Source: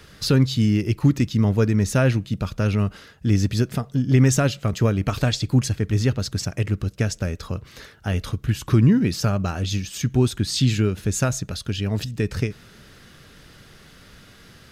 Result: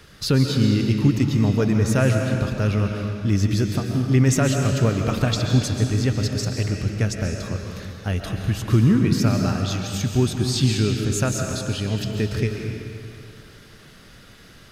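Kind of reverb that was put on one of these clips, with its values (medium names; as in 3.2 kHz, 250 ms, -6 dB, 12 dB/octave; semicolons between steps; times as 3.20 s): algorithmic reverb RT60 2.3 s, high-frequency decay 0.9×, pre-delay 95 ms, DRR 2.5 dB; trim -1 dB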